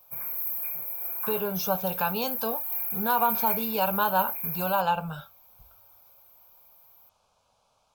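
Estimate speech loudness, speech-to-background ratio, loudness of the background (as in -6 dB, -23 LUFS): -29.0 LUFS, 0.0 dB, -29.0 LUFS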